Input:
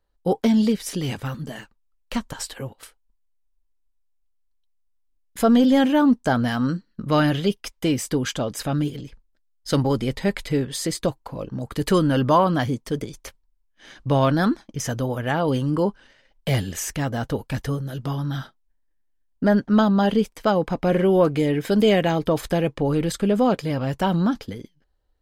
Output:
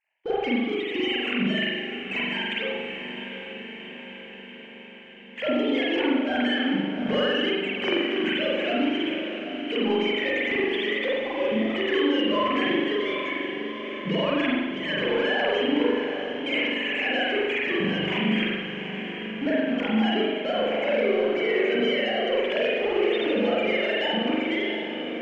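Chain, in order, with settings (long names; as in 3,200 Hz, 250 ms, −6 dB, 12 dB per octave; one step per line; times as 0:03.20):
three sine waves on the formant tracks
noise gate with hold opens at −39 dBFS
high shelf with overshoot 1,700 Hz +9.5 dB, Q 3
downward compressor, threshold −29 dBFS, peak gain reduction 21 dB
power curve on the samples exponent 0.7
high-frequency loss of the air 150 metres
on a send: feedback delay with all-pass diffusion 766 ms, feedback 62%, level −9 dB
on the sum: spring reverb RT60 1.2 s, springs 41 ms, chirp 70 ms, DRR −7 dB
level −2.5 dB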